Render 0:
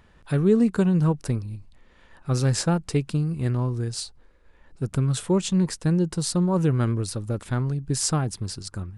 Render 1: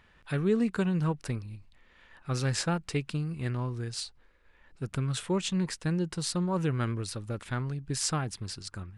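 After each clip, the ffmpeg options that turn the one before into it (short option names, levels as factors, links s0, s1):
-af "equalizer=f=2300:t=o:w=2.2:g=9,volume=0.398"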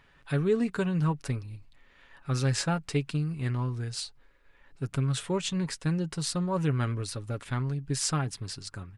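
-af "aecho=1:1:7.2:0.43"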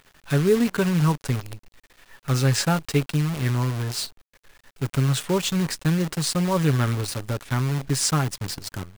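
-af "acrusher=bits=7:dc=4:mix=0:aa=0.000001,volume=2.11"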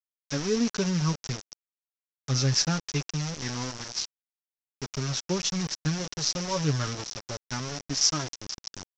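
-af "flanger=delay=2.8:depth=5.2:regen=33:speed=0.24:shape=triangular,aresample=16000,aeval=exprs='val(0)*gte(abs(val(0)),0.0316)':c=same,aresample=44100,lowpass=f=5700:t=q:w=6.3,volume=0.631"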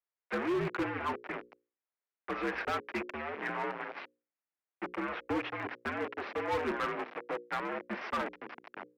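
-af "highpass=f=370:t=q:w=0.5412,highpass=f=370:t=q:w=1.307,lowpass=f=2400:t=q:w=0.5176,lowpass=f=2400:t=q:w=0.7071,lowpass=f=2400:t=q:w=1.932,afreqshift=-71,bandreject=f=60:t=h:w=6,bandreject=f=120:t=h:w=6,bandreject=f=180:t=h:w=6,bandreject=f=240:t=h:w=6,bandreject=f=300:t=h:w=6,bandreject=f=360:t=h:w=6,bandreject=f=420:t=h:w=6,bandreject=f=480:t=h:w=6,bandreject=f=540:t=h:w=6,volume=42.2,asoftclip=hard,volume=0.0237,volume=1.68"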